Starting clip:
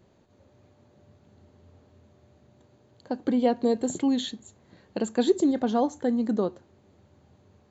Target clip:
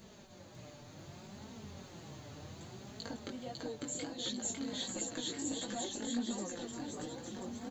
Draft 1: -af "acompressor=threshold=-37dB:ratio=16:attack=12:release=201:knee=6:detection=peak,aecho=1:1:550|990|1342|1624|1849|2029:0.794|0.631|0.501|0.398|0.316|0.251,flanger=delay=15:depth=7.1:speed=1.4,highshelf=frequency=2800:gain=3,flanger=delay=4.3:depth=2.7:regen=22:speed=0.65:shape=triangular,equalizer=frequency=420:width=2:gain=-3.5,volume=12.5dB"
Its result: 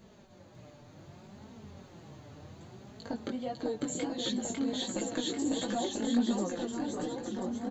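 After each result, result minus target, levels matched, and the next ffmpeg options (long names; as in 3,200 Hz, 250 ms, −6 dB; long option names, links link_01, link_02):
downward compressor: peak gain reduction −9 dB; 4,000 Hz band −4.5 dB
-af "acompressor=threshold=-46.5dB:ratio=16:attack=12:release=201:knee=6:detection=peak,aecho=1:1:550|990|1342|1624|1849|2029:0.794|0.631|0.501|0.398|0.316|0.251,flanger=delay=15:depth=7.1:speed=1.4,highshelf=frequency=2800:gain=3,flanger=delay=4.3:depth=2.7:regen=22:speed=0.65:shape=triangular,equalizer=frequency=420:width=2:gain=-3.5,volume=12.5dB"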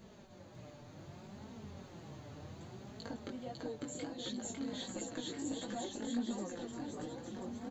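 4,000 Hz band −3.0 dB
-af "acompressor=threshold=-46.5dB:ratio=16:attack=12:release=201:knee=6:detection=peak,aecho=1:1:550|990|1342|1624|1849|2029:0.794|0.631|0.501|0.398|0.316|0.251,flanger=delay=15:depth=7.1:speed=1.4,highshelf=frequency=2800:gain=11.5,flanger=delay=4.3:depth=2.7:regen=22:speed=0.65:shape=triangular,equalizer=frequency=420:width=2:gain=-3.5,volume=12.5dB"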